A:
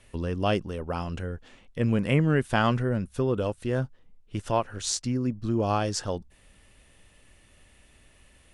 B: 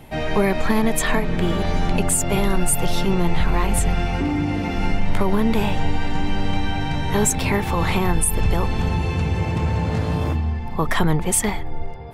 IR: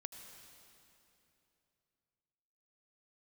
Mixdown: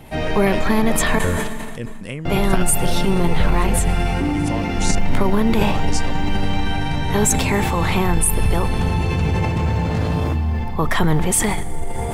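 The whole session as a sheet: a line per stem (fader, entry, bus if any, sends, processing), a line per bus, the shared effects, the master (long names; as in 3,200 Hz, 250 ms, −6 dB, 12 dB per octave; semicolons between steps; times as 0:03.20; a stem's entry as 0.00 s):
+0.5 dB, 0.00 s, no send, high-shelf EQ 4,300 Hz +11.5 dB; downward compressor 10 to 1, threshold −26 dBFS, peak gain reduction 10.5 dB; gate pattern ".xxx..xxx..xxxx" 194 BPM
−1.5 dB, 0.00 s, muted 0:01.19–0:02.25, send −4.5 dB, floating-point word with a short mantissa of 6 bits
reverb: on, RT60 3.0 s, pre-delay 72 ms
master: level that may fall only so fast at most 24 dB per second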